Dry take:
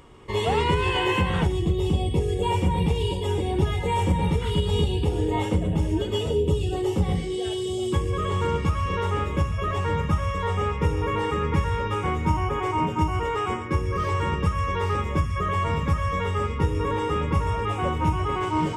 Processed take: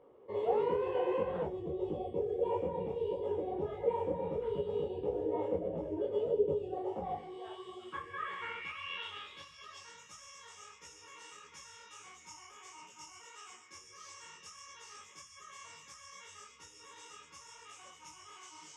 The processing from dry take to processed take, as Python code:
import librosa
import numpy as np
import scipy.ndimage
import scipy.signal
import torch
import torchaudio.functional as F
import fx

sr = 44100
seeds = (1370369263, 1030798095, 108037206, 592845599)

y = fx.filter_sweep_bandpass(x, sr, from_hz=530.0, to_hz=6300.0, start_s=6.63, end_s=9.99, q=3.9)
y = fx.detune_double(y, sr, cents=54)
y = F.gain(torch.from_numpy(y), 4.0).numpy()